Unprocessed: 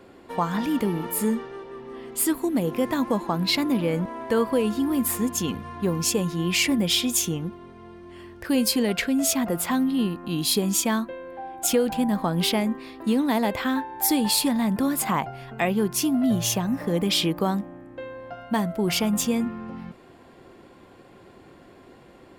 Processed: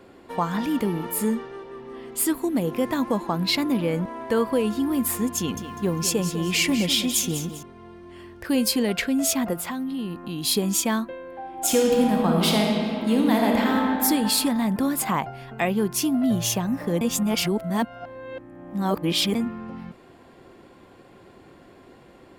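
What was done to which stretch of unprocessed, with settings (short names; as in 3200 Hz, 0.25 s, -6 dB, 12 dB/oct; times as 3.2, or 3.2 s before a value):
5.37–7.63 lo-fi delay 0.199 s, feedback 35%, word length 8-bit, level -10.5 dB
9.53–10.44 compressor 3:1, threshold -28 dBFS
11.43–13.84 reverb throw, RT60 2.6 s, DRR -0.5 dB
17.01–19.35 reverse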